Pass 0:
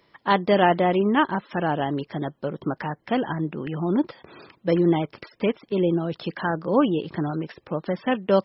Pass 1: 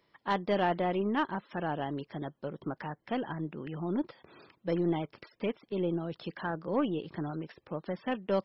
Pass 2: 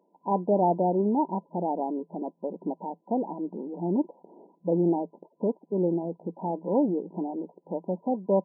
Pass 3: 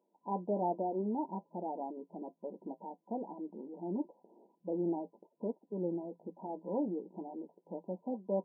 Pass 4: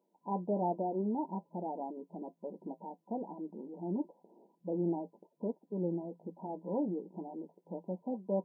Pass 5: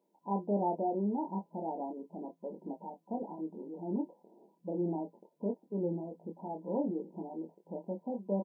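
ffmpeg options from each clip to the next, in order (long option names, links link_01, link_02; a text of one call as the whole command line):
ffmpeg -i in.wav -af "aeval=exprs='(tanh(2.82*val(0)+0.25)-tanh(0.25))/2.82':channel_layout=same,volume=-9dB" out.wav
ffmpeg -i in.wav -af "afftfilt=real='re*between(b*sr/4096,170,1000)':imag='im*between(b*sr/4096,170,1000)':win_size=4096:overlap=0.75,volume=6dB" out.wav
ffmpeg -i in.wav -af "flanger=delay=8.3:depth=1.2:regen=-52:speed=1.1:shape=triangular,volume=-6.5dB" out.wav
ffmpeg -i in.wav -af "equalizer=frequency=150:width=3.4:gain=10.5" out.wav
ffmpeg -i in.wav -filter_complex "[0:a]asplit=2[link_01][link_02];[link_02]adelay=25,volume=-5dB[link_03];[link_01][link_03]amix=inputs=2:normalize=0" out.wav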